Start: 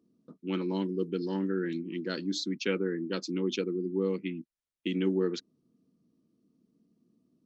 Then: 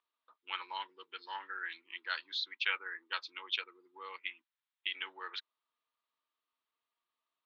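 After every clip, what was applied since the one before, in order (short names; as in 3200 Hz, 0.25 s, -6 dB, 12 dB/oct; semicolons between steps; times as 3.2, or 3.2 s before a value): elliptic band-pass 910–3700 Hz, stop band 80 dB; gain +4.5 dB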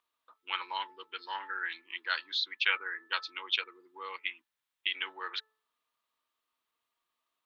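de-hum 436 Hz, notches 4; gain +5 dB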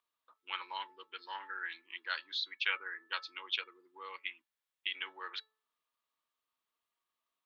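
resonator 560 Hz, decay 0.17 s, harmonics all, mix 40%; gain -1 dB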